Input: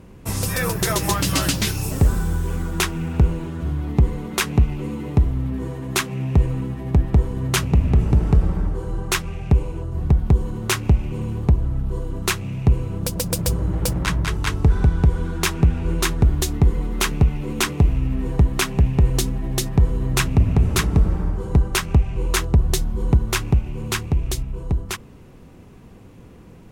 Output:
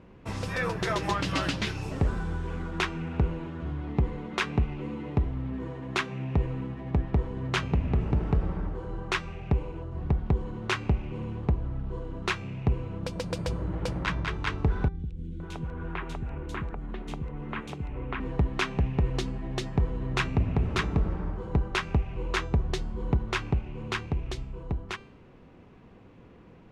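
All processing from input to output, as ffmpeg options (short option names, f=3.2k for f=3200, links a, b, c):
-filter_complex "[0:a]asettb=1/sr,asplit=3[a][b][c];[a]atrim=end=14.884[d];[b]atrim=start=14.88:end=18.2,asetpts=PTS-STARTPTS,afade=t=in:d=0.004:c=qsin,afade=t=out:st=3.316:d=0.004:c=qsin,equalizer=f=5k:w=1.2:g=-9,acompressor=threshold=-21dB:ratio=6:attack=3.2:release=140:knee=1:detection=peak,acrossover=split=320|3200[e][f][g];[g]adelay=70[h];[f]adelay=520[i];[e][i][h]amix=inputs=3:normalize=0,atrim=end_sample=146412[j];[c]atrim=start=18.196[k];[d][j]acrossfade=d=0.004:c1=hsin:c2=qsin[l];[l][k]acrossfade=d=0.004:c1=qsin:c2=hsin,lowpass=3.2k,lowshelf=f=220:g=-7,bandreject=f=392.9:t=h:w=4,bandreject=f=785.8:t=h:w=4,bandreject=f=1.1787k:t=h:w=4,bandreject=f=1.5716k:t=h:w=4,bandreject=f=1.9645k:t=h:w=4,bandreject=f=2.3574k:t=h:w=4,bandreject=f=2.7503k:t=h:w=4,bandreject=f=3.1432k:t=h:w=4,bandreject=f=3.5361k:t=h:w=4,bandreject=f=3.929k:t=h:w=4,bandreject=f=4.3219k:t=h:w=4,bandreject=f=4.7148k:t=h:w=4,bandreject=f=5.1077k:t=h:w=4,bandreject=f=5.5006k:t=h:w=4,bandreject=f=5.8935k:t=h:w=4,bandreject=f=6.2864k:t=h:w=4,bandreject=f=6.6793k:t=h:w=4,bandreject=f=7.0722k:t=h:w=4,bandreject=f=7.4651k:t=h:w=4,bandreject=f=7.858k:t=h:w=4,bandreject=f=8.2509k:t=h:w=4,bandreject=f=8.6438k:t=h:w=4,bandreject=f=9.0367k:t=h:w=4,bandreject=f=9.4296k:t=h:w=4,bandreject=f=9.8225k:t=h:w=4,bandreject=f=10.2154k:t=h:w=4,bandreject=f=10.6083k:t=h:w=4,bandreject=f=11.0012k:t=h:w=4,bandreject=f=11.3941k:t=h:w=4,bandreject=f=11.787k:t=h:w=4,bandreject=f=12.1799k:t=h:w=4,bandreject=f=12.5728k:t=h:w=4,bandreject=f=12.9657k:t=h:w=4,volume=-4dB"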